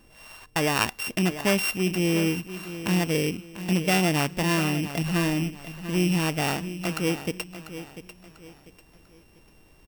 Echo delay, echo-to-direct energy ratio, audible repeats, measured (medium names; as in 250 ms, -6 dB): 694 ms, -12.0 dB, 3